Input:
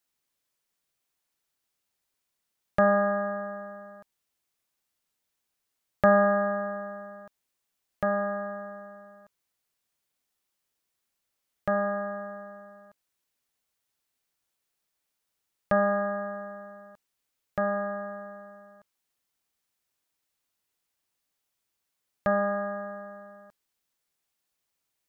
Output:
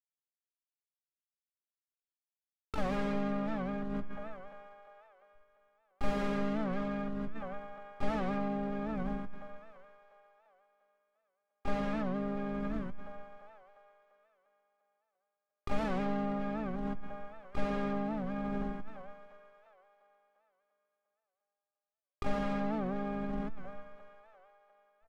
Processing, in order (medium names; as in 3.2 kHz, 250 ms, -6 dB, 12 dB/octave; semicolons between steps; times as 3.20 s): hysteresis with a dead band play -43.5 dBFS; on a send: two-band feedback delay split 550 Hz, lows 129 ms, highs 348 ms, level -13 dB; on the sum: valve stage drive 35 dB, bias 0.35; simulated room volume 720 m³, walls furnished, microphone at 0.49 m; dynamic bell 760 Hz, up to -5 dB, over -57 dBFS, Q 4; harmony voices -5 st -16 dB, +5 st -3 dB, +12 st -7 dB; tilt EQ -3.5 dB/octave; in parallel at -0.5 dB: compressor with a negative ratio -42 dBFS, ratio -0.5; on the sum: warped record 78 rpm, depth 160 cents; trim -2.5 dB